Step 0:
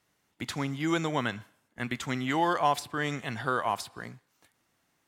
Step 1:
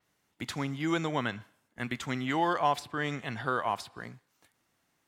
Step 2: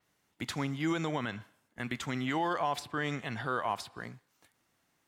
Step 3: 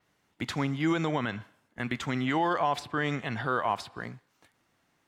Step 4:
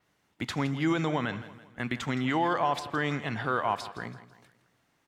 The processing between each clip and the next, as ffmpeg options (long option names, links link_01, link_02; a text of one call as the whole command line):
ffmpeg -i in.wav -af "adynamicequalizer=threshold=0.00282:dfrequency=5700:dqfactor=0.7:tfrequency=5700:tqfactor=0.7:attack=5:release=100:ratio=0.375:range=3.5:mode=cutabove:tftype=highshelf,volume=-1.5dB" out.wav
ffmpeg -i in.wav -af "alimiter=limit=-21.5dB:level=0:latency=1:release=43" out.wav
ffmpeg -i in.wav -af "highshelf=frequency=6400:gain=-9.5,volume=4.5dB" out.wav
ffmpeg -i in.wav -af "aecho=1:1:165|330|495|660:0.178|0.0782|0.0344|0.0151" out.wav